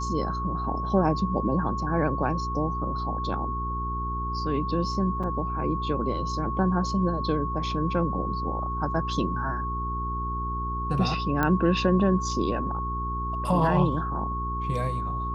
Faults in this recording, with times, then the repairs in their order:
hum 60 Hz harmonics 7 -32 dBFS
whine 1.1 kHz -30 dBFS
5.23–5.24 s: dropout 6.1 ms
11.43 s: pop -12 dBFS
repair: de-click; de-hum 60 Hz, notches 7; band-stop 1.1 kHz, Q 30; interpolate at 5.23 s, 6.1 ms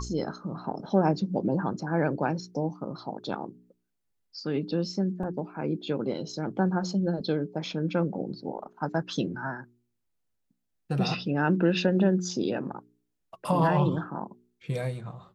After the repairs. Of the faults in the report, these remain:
nothing left

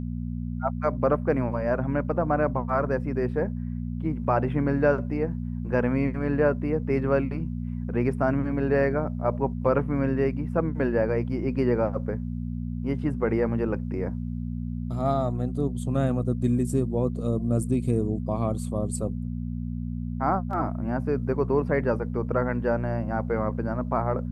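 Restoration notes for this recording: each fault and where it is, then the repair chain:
hum 60 Hz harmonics 4 -31 dBFS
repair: de-hum 60 Hz, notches 4

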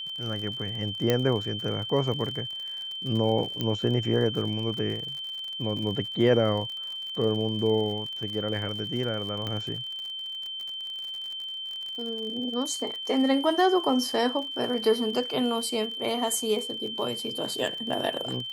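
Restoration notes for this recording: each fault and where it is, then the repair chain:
crackle 55 per s -34 dBFS
whine 3.1 kHz -33 dBFS
1.10 s: pop -9 dBFS
3.61 s: pop -15 dBFS
9.47 s: pop -19 dBFS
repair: de-click; band-stop 3.1 kHz, Q 30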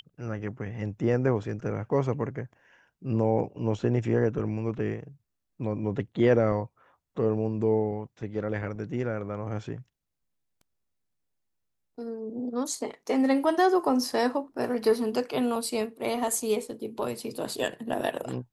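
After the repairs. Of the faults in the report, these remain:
9.47 s: pop

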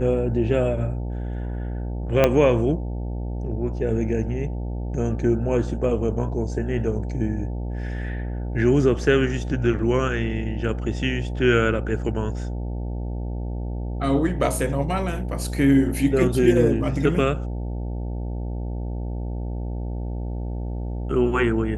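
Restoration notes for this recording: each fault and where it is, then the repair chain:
buzz 60 Hz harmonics 15 -28 dBFS
2.24 s: pop -4 dBFS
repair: de-click; de-hum 60 Hz, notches 15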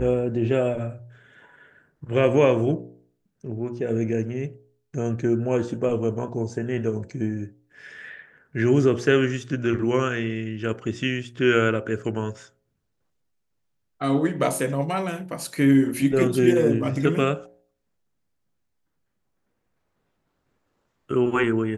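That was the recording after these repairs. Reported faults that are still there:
2.24 s: pop

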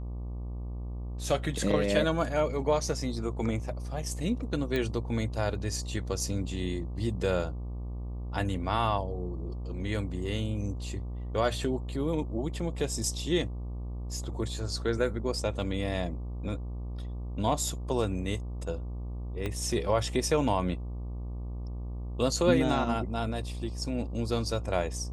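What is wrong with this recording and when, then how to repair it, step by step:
buzz 60 Hz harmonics 20 -36 dBFS
4.76 s: pop -18 dBFS
19.46 s: pop -20 dBFS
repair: de-click; de-hum 60 Hz, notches 20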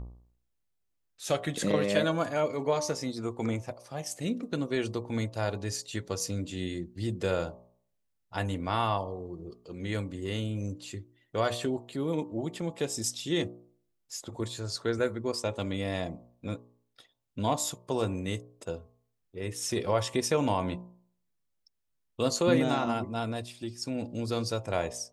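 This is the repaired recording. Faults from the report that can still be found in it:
19.46 s: pop

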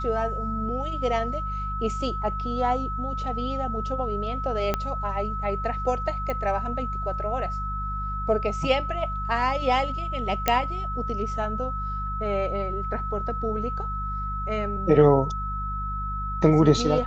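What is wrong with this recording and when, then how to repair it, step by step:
hum 50 Hz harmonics 4 -32 dBFS
whine 1.3 kHz -30 dBFS
4.74 s: pop -10 dBFS
6.30 s: pop -17 dBFS
10.48 s: pop -5 dBFS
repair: de-click; de-hum 50 Hz, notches 4; band-stop 1.3 kHz, Q 30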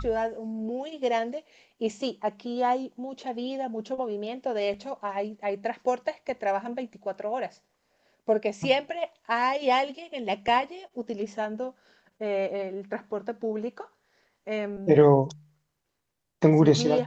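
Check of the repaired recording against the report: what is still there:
4.74 s: pop

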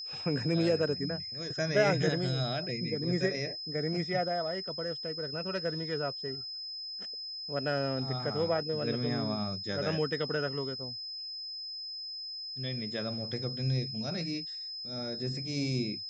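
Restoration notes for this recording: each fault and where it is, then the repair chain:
whine 5.1 kHz -38 dBFS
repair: band-stop 5.1 kHz, Q 30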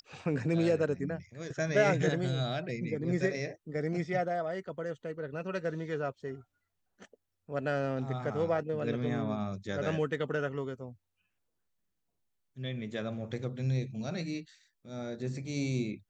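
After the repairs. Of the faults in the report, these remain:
nothing left

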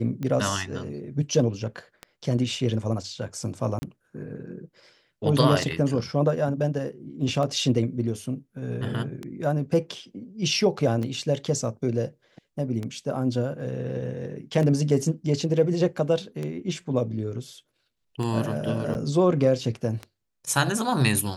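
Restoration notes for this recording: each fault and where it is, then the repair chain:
tick 33 1/3 rpm -19 dBFS
3.79–3.82 s: dropout 30 ms
18.94–18.95 s: dropout 9.3 ms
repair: de-click; interpolate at 3.79 s, 30 ms; interpolate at 18.94 s, 9.3 ms

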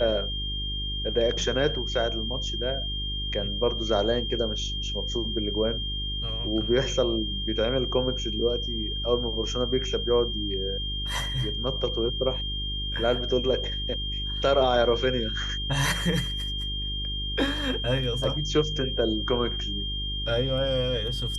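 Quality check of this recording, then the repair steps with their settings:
hum 50 Hz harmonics 8 -33 dBFS
whine 3.2 kHz -31 dBFS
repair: de-hum 50 Hz, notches 8; band-stop 3.2 kHz, Q 30

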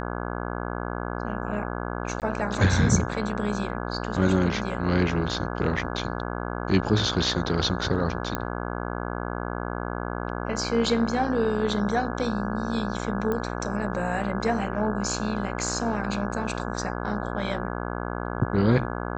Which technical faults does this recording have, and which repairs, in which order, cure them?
buzz 60 Hz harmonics 28 -31 dBFS
2.20–2.22 s: dropout 18 ms
8.35 s: pop -12 dBFS
13.32 s: pop -16 dBFS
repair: de-click; de-hum 60 Hz, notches 28; interpolate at 2.20 s, 18 ms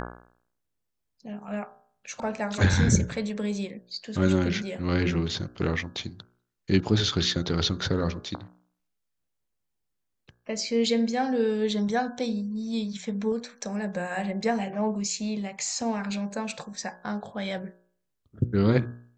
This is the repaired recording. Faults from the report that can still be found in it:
nothing left

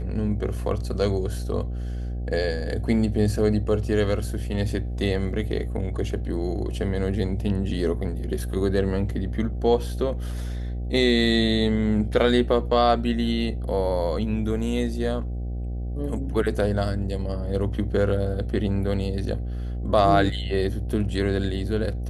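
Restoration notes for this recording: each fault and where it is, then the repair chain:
buzz 60 Hz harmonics 13 -29 dBFS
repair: de-hum 60 Hz, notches 13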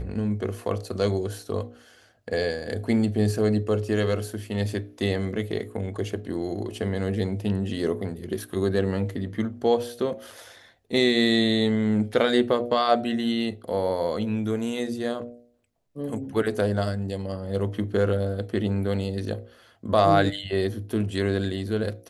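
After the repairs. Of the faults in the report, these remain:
nothing left

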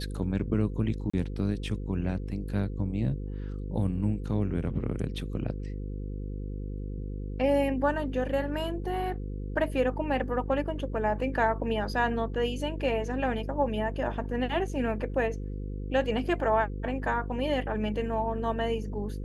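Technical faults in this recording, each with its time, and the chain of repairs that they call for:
buzz 50 Hz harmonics 10 -35 dBFS
1.10–1.14 s: dropout 35 ms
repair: de-hum 50 Hz, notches 10; interpolate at 1.10 s, 35 ms

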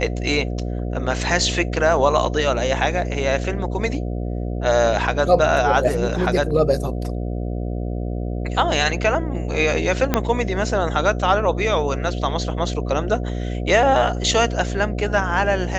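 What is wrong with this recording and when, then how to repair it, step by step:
buzz 60 Hz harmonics 12 -25 dBFS
10.14 s: pop -3 dBFS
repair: de-click; de-hum 60 Hz, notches 12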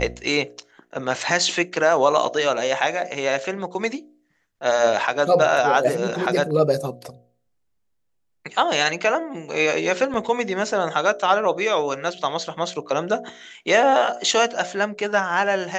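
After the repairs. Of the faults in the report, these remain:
10.14 s: pop

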